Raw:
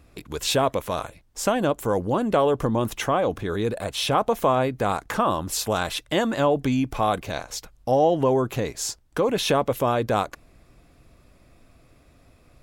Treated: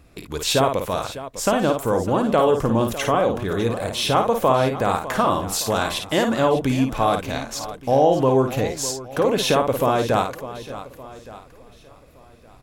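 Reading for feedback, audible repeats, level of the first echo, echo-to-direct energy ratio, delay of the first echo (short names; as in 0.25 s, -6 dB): no steady repeat, 6, -6.0 dB, -5.0 dB, 53 ms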